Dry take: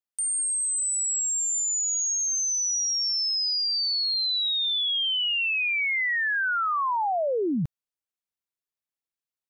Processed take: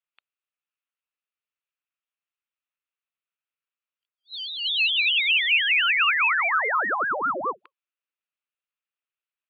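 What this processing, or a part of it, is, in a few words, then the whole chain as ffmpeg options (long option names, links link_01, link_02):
voice changer toy: -filter_complex "[0:a]asplit=3[link_01][link_02][link_03];[link_01]afade=type=out:start_time=4.03:duration=0.02[link_04];[link_02]lowpass=frequency=1900:poles=1,afade=type=in:start_time=4.03:duration=0.02,afade=type=out:start_time=4.64:duration=0.02[link_05];[link_03]afade=type=in:start_time=4.64:duration=0.02[link_06];[link_04][link_05][link_06]amix=inputs=3:normalize=0,afftfilt=real='re*between(b*sr/4096,280,4000)':imag='im*between(b*sr/4096,280,4000)':win_size=4096:overlap=0.75,aeval=exprs='val(0)*sin(2*PI*460*n/s+460*0.85/4.9*sin(2*PI*4.9*n/s))':channel_layout=same,highpass=500,equalizer=frequency=800:width_type=q:width=4:gain=-6,equalizer=frequency=1300:width_type=q:width=4:gain=6,equalizer=frequency=2600:width_type=q:width=4:gain=8,lowpass=frequency=3900:width=0.5412,lowpass=frequency=3900:width=1.3066,volume=3.5dB"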